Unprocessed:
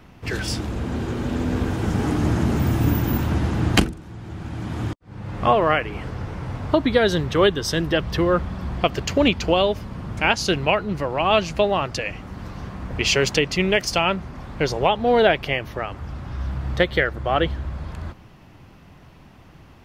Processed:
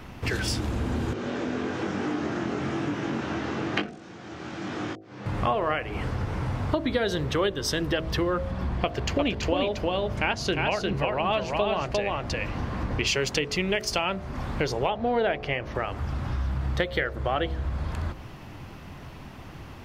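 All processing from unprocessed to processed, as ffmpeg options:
ffmpeg -i in.wav -filter_complex "[0:a]asettb=1/sr,asplit=3[link_01][link_02][link_03];[link_01]atrim=end=1.134[link_04];[link_02]atrim=start=1.13:end=5.26,asetpts=PTS-STARTPTS,afade=type=in:duration=0.004:curve=qsin,afade=type=out:start_time=4.126:duration=0.004:curve=qsin,flanger=delay=20:depth=3.8:speed=1.1,highpass=250,equalizer=frequency=250:width_type=q:width=4:gain=-4,equalizer=frequency=910:width_type=q:width=4:gain=-5,equalizer=frequency=5800:width_type=q:width=4:gain=3,lowpass=frequency=7100:width=0.5412,lowpass=frequency=7100:width=1.3066,acrossover=split=3400[link_05][link_06];[link_06]acompressor=threshold=-53dB:ratio=4:attack=1:release=60[link_07];[link_05][link_07]amix=inputs=2:normalize=0[link_08];[link_03]atrim=start=5.256[link_09];[link_04][link_08]acrossfade=duration=0.004:curve1=hsin:curve2=qsin[link_10];[link_10][link_09]acrossfade=duration=0.004:curve1=qsin:curve2=hsin,asettb=1/sr,asplit=3[link_11][link_12][link_13];[link_11]atrim=end=8.514[link_14];[link_12]atrim=start=8.51:end=13.07,asetpts=PTS-STARTPTS,afade=type=in:duration=0.004:curve=qsin,afade=type=out:start_time=4.556:duration=0.004:curve=qsin,highshelf=frequency=6100:gain=-9,bandreject=frequency=1300:width=24,aecho=1:1:352:0.668,atrim=end_sample=201096[link_15];[link_13]atrim=start=13.066[link_16];[link_14][link_15]acrossfade=duration=0.004:curve1=hsin:curve2=qsin[link_17];[link_17][link_16]acrossfade=duration=0.004:curve1=qsin:curve2=hsin,asettb=1/sr,asplit=3[link_18][link_19][link_20];[link_18]atrim=end=14.904[link_21];[link_19]atrim=start=14.9:end=15.75,asetpts=PTS-STARTPTS,afade=type=in:duration=0.004:curve=qsin,afade=type=out:start_time=0.846:duration=0.004:curve=qsin,lowpass=5400,equalizer=frequency=3600:width_type=o:width=0.89:gain=-5[link_22];[link_20]atrim=start=15.746[link_23];[link_21][link_22]acrossfade=duration=0.004:curve1=hsin:curve2=qsin[link_24];[link_24][link_23]acrossfade=duration=0.004:curve1=qsin:curve2=hsin,equalizer=frequency=170:width=7.6:gain=-5,bandreject=frequency=53.75:width_type=h:width=4,bandreject=frequency=107.5:width_type=h:width=4,bandreject=frequency=161.25:width_type=h:width=4,bandreject=frequency=215:width_type=h:width=4,bandreject=frequency=268.75:width_type=h:width=4,bandreject=frequency=322.5:width_type=h:width=4,bandreject=frequency=376.25:width_type=h:width=4,bandreject=frequency=430:width_type=h:width=4,bandreject=frequency=483.75:width_type=h:width=4,bandreject=frequency=537.5:width_type=h:width=4,bandreject=frequency=591.25:width_type=h:width=4,bandreject=frequency=645:width_type=h:width=4,bandreject=frequency=698.75:width_type=h:width=4,bandreject=frequency=752.5:width_type=h:width=4,acompressor=threshold=-33dB:ratio=3,volume=6dB" out.wav

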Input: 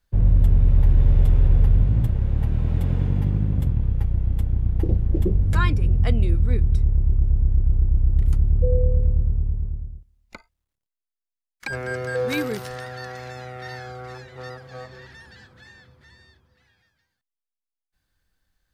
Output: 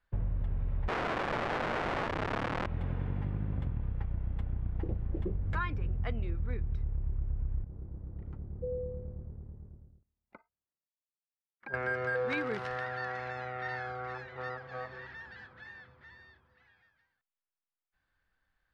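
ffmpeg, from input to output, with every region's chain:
ffmpeg -i in.wav -filter_complex "[0:a]asettb=1/sr,asplit=3[link_01][link_02][link_03];[link_01]atrim=end=0.884[link_04];[link_02]atrim=start=0.88:end=2.66,asetpts=PTS-STARTPTS,afade=type=in:duration=0.004:curve=qsin,afade=type=out:start_time=1.776:duration=0.004:curve=qsin,lowshelf=frequency=240:gain=5.5,aeval=exprs='(mod(6.31*val(0)+1,2)-1)/6.31':channel_layout=same,asplit=2[link_05][link_06];[link_06]adelay=27,volume=-11dB[link_07];[link_05][link_07]amix=inputs=2:normalize=0,atrim=end_sample=78498[link_08];[link_03]atrim=start=2.656[link_09];[link_04][link_08]acrossfade=duration=0.004:curve1=hsin:curve2=qsin[link_10];[link_10][link_09]acrossfade=duration=0.004:curve1=qsin:curve2=hsin,asettb=1/sr,asplit=3[link_11][link_12][link_13];[link_11]atrim=end=7.644[link_14];[link_12]atrim=start=7.64:end=11.74,asetpts=PTS-STARTPTS,afade=type=in:duration=0.004:curve=qsin,afade=type=out:start_time=4.096:duration=0.004:curve=qsin,bandpass=frequency=200:width_type=q:width=0.64,lowshelf=frequency=190:gain=-10[link_15];[link_13]atrim=start=11.736[link_16];[link_14][link_15]acrossfade=duration=0.004:curve1=hsin:curve2=qsin[link_17];[link_17][link_16]acrossfade=duration=0.004:curve1=qsin:curve2=hsin,lowpass=1500,tiltshelf=frequency=840:gain=-8.5,acompressor=threshold=-29dB:ratio=6" out.wav

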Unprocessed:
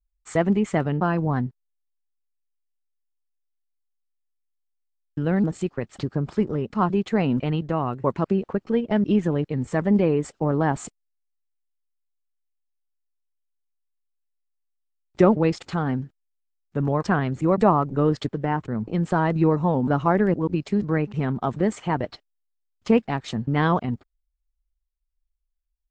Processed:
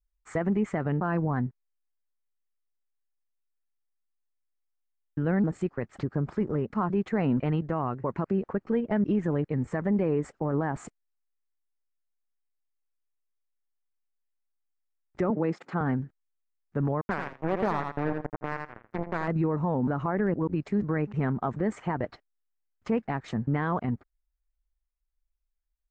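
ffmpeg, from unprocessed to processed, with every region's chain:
ffmpeg -i in.wav -filter_complex "[0:a]asettb=1/sr,asplit=3[link_01][link_02][link_03];[link_01]atrim=end=15.304[link_04];[link_02]atrim=start=15.3:end=15.81,asetpts=PTS-STARTPTS,afade=type=in:duration=0.004:curve=qsin,afade=type=out:start_time=0.506:duration=0.004:curve=qsin,highpass=frequency=160:width=0.5412,highpass=frequency=160:width=1.3066,highshelf=frequency=2900:gain=-7.5[link_05];[link_03]atrim=start=15.806[link_06];[link_04][link_05]acrossfade=duration=0.004:curve1=hsin:curve2=qsin[link_07];[link_07][link_06]acrossfade=duration=0.004:curve1=qsin:curve2=hsin,asettb=1/sr,asplit=3[link_08][link_09][link_10];[link_08]atrim=end=17.014[link_11];[link_09]atrim=start=17.01:end=19.28,asetpts=PTS-STARTPTS,afade=type=in:duration=0.004:curve=qsin,afade=type=out:start_time=2.266:duration=0.004:curve=qsin,acrusher=bits=2:mix=0:aa=0.5,highshelf=frequency=5400:gain=-8.5,aecho=1:1:82|164:0.299|0.0448,atrim=end_sample=100107[link_12];[link_10]atrim=start=19.276[link_13];[link_11][link_12]acrossfade=duration=0.004:curve1=hsin:curve2=qsin[link_14];[link_14][link_13]acrossfade=duration=0.004:curve1=qsin:curve2=hsin,highshelf=frequency=2500:width_type=q:width=1.5:gain=-8,alimiter=limit=-15.5dB:level=0:latency=1:release=53,volume=-2.5dB" out.wav

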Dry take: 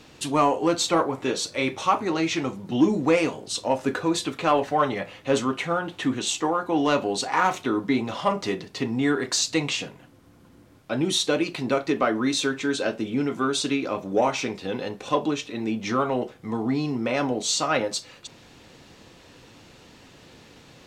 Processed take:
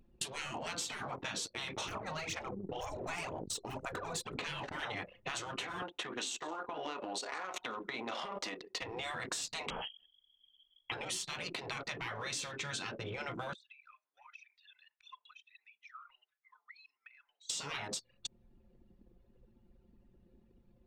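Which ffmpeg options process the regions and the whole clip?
ffmpeg -i in.wav -filter_complex "[0:a]asettb=1/sr,asplit=3[link_01][link_02][link_03];[link_01]atrim=end=1.884[link_04];[link_02]atrim=start=1.88:end=4.39,asetpts=PTS-STARTPTS,afade=type=in:duration=0.004:curve=qsin,afade=type=out:start_time=2.506:duration=0.004:curve=qsin,aphaser=in_gain=1:out_gain=1:delay=2.7:decay=0.66:speed=2:type=sinusoidal,equalizer=frequency=3000:width_type=o:width=2.7:gain=-10[link_05];[link_03]atrim=start=4.386[link_06];[link_04][link_05]acrossfade=duration=0.004:curve1=hsin:curve2=qsin[link_07];[link_07][link_06]acrossfade=duration=0.004:curve1=qsin:curve2=hsin,asettb=1/sr,asplit=3[link_08][link_09][link_10];[link_08]atrim=end=5.824[link_11];[link_09]atrim=start=5.82:end=8.82,asetpts=PTS-STARTPTS,afade=type=in:duration=0.004:curve=qsin,afade=type=out:start_time=2.996:duration=0.004:curve=qsin,highpass=430,acompressor=threshold=-28dB:ratio=12:attack=3.2:release=140:knee=1:detection=peak,aecho=1:1:172:0.133,atrim=end_sample=132300[link_12];[link_10]atrim=start=8.816[link_13];[link_11][link_12]acrossfade=duration=0.004:curve1=hsin:curve2=qsin[link_14];[link_14][link_13]acrossfade=duration=0.004:curve1=qsin:curve2=hsin,asettb=1/sr,asplit=3[link_15][link_16][link_17];[link_15]atrim=end=9.704[link_18];[link_16]atrim=start=9.7:end=10.92,asetpts=PTS-STARTPTS,afade=type=in:duration=0.004:curve=qsin,afade=type=out:start_time=1.216:duration=0.004:curve=qsin,aeval=exprs='val(0)+0.00141*(sin(2*PI*50*n/s)+sin(2*PI*2*50*n/s)/2+sin(2*PI*3*50*n/s)/3+sin(2*PI*4*50*n/s)/4+sin(2*PI*5*50*n/s)/5)':channel_layout=same,lowpass=frequency=2900:width_type=q:width=0.5098,lowpass=frequency=2900:width_type=q:width=0.6013,lowpass=frequency=2900:width_type=q:width=0.9,lowpass=frequency=2900:width_type=q:width=2.563,afreqshift=-3400[link_19];[link_17]atrim=start=10.916[link_20];[link_18][link_19]acrossfade=duration=0.004:curve1=hsin:curve2=qsin[link_21];[link_21][link_20]acrossfade=duration=0.004:curve1=qsin:curve2=hsin,asettb=1/sr,asplit=3[link_22][link_23][link_24];[link_22]atrim=end=13.534[link_25];[link_23]atrim=start=13.53:end=17.5,asetpts=PTS-STARTPTS,afade=type=in:duration=0.004:curve=qsin,afade=type=out:start_time=3.966:duration=0.004:curve=qsin,highpass=frequency=1500:width=0.5412,highpass=frequency=1500:width=1.3066,acompressor=threshold=-42dB:ratio=6:attack=3.2:release=140:knee=1:detection=peak[link_26];[link_24]atrim=start=17.496[link_27];[link_25][link_26]acrossfade=duration=0.004:curve1=hsin:curve2=qsin[link_28];[link_28][link_27]acrossfade=duration=0.004:curve1=qsin:curve2=hsin,anlmdn=2.51,afftfilt=real='re*lt(hypot(re,im),0.112)':imag='im*lt(hypot(re,im),0.112)':win_size=1024:overlap=0.75,acompressor=threshold=-41dB:ratio=6,volume=3.5dB" out.wav

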